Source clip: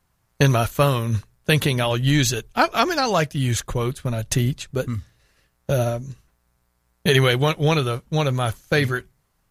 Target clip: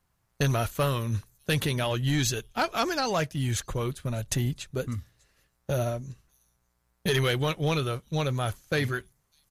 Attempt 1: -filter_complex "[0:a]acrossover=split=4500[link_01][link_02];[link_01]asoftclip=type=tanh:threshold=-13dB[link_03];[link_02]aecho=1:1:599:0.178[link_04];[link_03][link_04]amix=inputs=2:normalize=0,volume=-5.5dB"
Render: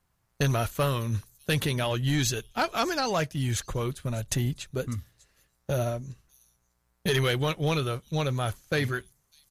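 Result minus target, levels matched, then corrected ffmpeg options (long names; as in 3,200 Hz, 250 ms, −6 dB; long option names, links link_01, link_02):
echo-to-direct +6.5 dB
-filter_complex "[0:a]acrossover=split=4500[link_01][link_02];[link_01]asoftclip=type=tanh:threshold=-13dB[link_03];[link_02]aecho=1:1:599:0.0841[link_04];[link_03][link_04]amix=inputs=2:normalize=0,volume=-5.5dB"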